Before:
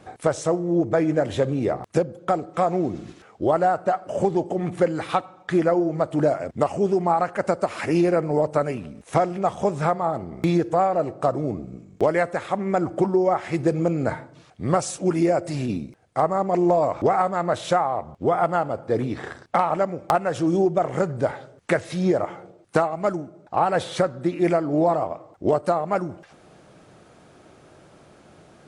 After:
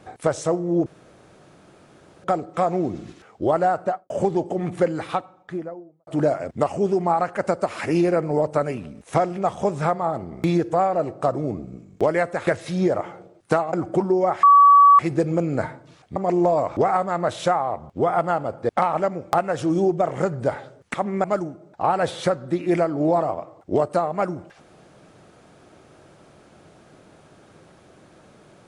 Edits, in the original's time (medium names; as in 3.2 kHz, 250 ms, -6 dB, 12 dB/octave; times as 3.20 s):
0.86–2.24 s: room tone
3.82–4.10 s: studio fade out
4.81–6.07 s: studio fade out
12.47–12.77 s: swap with 21.71–22.97 s
13.47 s: add tone 1.14 kHz -8 dBFS 0.56 s
14.64–16.41 s: delete
18.94–19.46 s: delete